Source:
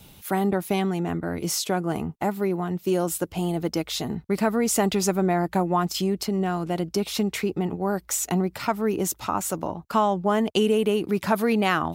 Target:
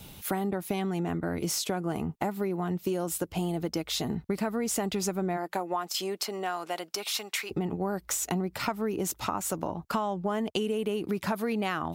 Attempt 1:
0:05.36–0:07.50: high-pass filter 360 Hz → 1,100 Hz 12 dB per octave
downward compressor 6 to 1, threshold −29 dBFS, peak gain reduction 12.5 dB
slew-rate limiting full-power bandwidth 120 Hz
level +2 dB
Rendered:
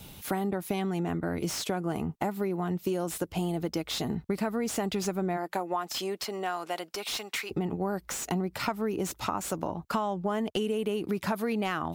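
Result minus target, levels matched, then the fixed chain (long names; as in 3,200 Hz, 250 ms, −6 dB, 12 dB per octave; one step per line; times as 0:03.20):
slew-rate limiting: distortion +13 dB
0:05.36–0:07.50: high-pass filter 360 Hz → 1,100 Hz 12 dB per octave
downward compressor 6 to 1, threshold −29 dBFS, peak gain reduction 12.5 dB
slew-rate limiting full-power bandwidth 353 Hz
level +2 dB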